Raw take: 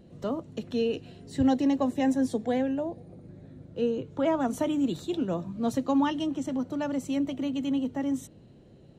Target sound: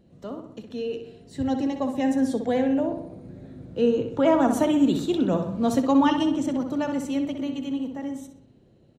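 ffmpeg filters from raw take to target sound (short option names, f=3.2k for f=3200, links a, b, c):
-filter_complex "[0:a]dynaudnorm=f=260:g=17:m=11.5dB,asplit=2[a][b];[b]adelay=63,lowpass=f=3.9k:p=1,volume=-7dB,asplit=2[c][d];[d]adelay=63,lowpass=f=3.9k:p=1,volume=0.55,asplit=2[e][f];[f]adelay=63,lowpass=f=3.9k:p=1,volume=0.55,asplit=2[g][h];[h]adelay=63,lowpass=f=3.9k:p=1,volume=0.55,asplit=2[i][j];[j]adelay=63,lowpass=f=3.9k:p=1,volume=0.55,asplit=2[k][l];[l]adelay=63,lowpass=f=3.9k:p=1,volume=0.55,asplit=2[m][n];[n]adelay=63,lowpass=f=3.9k:p=1,volume=0.55[o];[c][e][g][i][k][m][o]amix=inputs=7:normalize=0[p];[a][p]amix=inputs=2:normalize=0,volume=-5dB"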